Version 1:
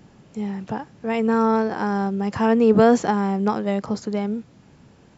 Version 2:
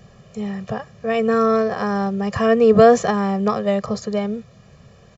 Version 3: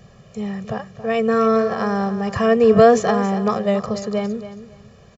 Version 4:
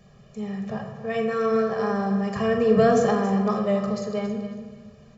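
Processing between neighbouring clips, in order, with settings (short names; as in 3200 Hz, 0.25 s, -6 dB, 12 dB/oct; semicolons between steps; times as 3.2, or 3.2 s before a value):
comb 1.7 ms, depth 93%; gain +1.5 dB
feedback echo 0.276 s, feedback 23%, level -12.5 dB
shoebox room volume 910 m³, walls mixed, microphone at 1.3 m; gain -8 dB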